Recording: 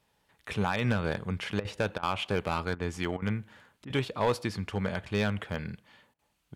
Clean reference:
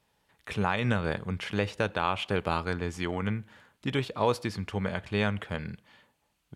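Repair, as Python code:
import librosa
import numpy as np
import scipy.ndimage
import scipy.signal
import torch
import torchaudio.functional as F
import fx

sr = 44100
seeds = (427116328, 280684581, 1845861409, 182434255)

y = fx.fix_declip(x, sr, threshold_db=-19.5)
y = fx.fix_interpolate(y, sr, at_s=(1.6, 1.98, 2.75, 3.17, 3.85, 6.14), length_ms=48.0)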